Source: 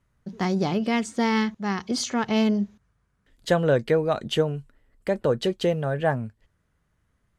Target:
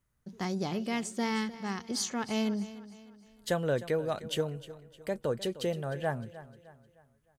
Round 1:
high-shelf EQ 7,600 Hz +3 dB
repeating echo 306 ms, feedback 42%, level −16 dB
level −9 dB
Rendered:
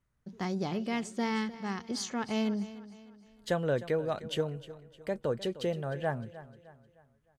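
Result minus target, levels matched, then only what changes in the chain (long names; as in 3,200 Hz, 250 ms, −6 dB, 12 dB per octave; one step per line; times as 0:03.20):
8,000 Hz band −5.0 dB
change: high-shelf EQ 7,600 Hz +15 dB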